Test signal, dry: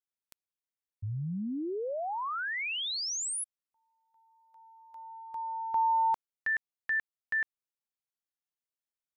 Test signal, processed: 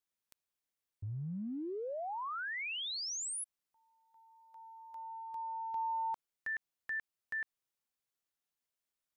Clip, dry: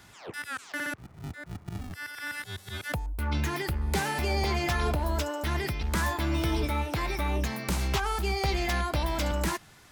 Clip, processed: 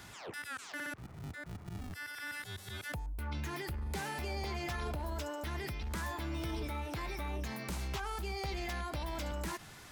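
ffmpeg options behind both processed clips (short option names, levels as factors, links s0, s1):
-af "acompressor=threshold=0.00398:ratio=2:attack=0.24:release=30:detection=rms,volume=1.41"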